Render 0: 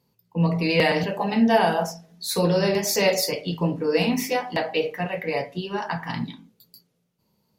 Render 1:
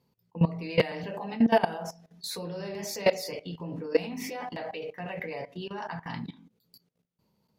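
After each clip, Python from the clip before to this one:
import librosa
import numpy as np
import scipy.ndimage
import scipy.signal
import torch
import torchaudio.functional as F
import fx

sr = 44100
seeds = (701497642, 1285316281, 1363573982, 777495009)

y = fx.high_shelf(x, sr, hz=5100.0, db=-7.0)
y = fx.level_steps(y, sr, step_db=18)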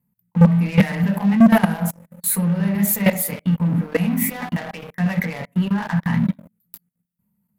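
y = fx.curve_eq(x, sr, hz=(140.0, 200.0, 340.0, 1900.0, 5300.0, 7900.0, 12000.0), db=(0, 8, -16, -3, -25, 1, 9))
y = fx.leveller(y, sr, passes=3)
y = y * librosa.db_to_amplitude(5.0)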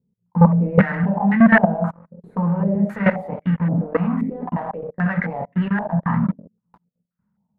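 y = fx.filter_held_lowpass(x, sr, hz=3.8, low_hz=430.0, high_hz=1800.0)
y = y * librosa.db_to_amplitude(-1.0)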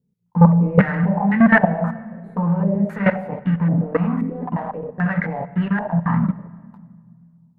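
y = fx.room_shoebox(x, sr, seeds[0], volume_m3=3200.0, walls='mixed', distance_m=0.39)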